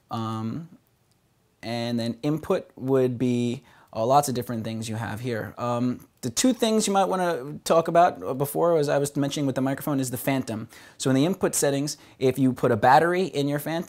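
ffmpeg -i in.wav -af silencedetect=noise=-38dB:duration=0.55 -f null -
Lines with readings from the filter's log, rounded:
silence_start: 0.65
silence_end: 1.63 | silence_duration: 0.98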